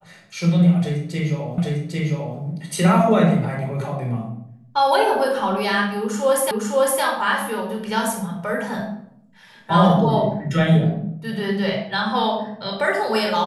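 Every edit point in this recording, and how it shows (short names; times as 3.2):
1.58 repeat of the last 0.8 s
6.51 repeat of the last 0.51 s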